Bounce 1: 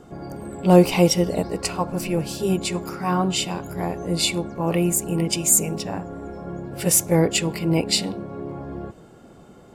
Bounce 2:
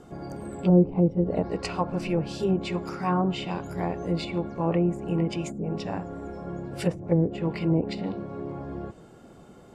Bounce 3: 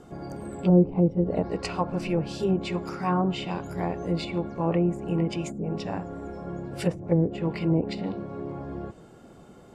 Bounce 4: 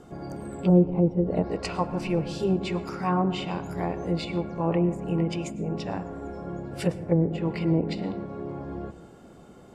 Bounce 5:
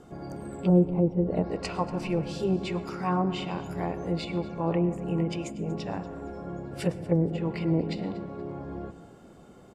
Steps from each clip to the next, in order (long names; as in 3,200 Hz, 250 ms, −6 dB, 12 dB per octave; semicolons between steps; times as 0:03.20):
treble cut that deepens with the level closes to 350 Hz, closed at −13.5 dBFS; level −2.5 dB
no processing that can be heard
dense smooth reverb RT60 0.99 s, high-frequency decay 0.35×, pre-delay 90 ms, DRR 14.5 dB
repeating echo 237 ms, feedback 28%, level −18.5 dB; level −2 dB